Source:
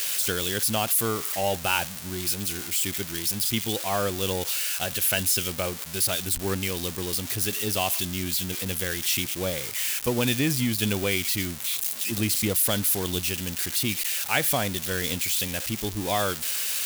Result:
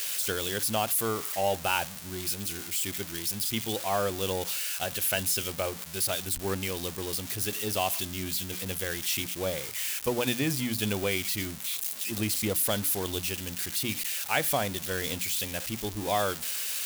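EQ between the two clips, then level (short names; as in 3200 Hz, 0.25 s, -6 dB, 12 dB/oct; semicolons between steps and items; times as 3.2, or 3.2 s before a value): notches 60/120/180/240/300 Hz; dynamic EQ 710 Hz, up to +4 dB, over -38 dBFS, Q 0.79; -4.5 dB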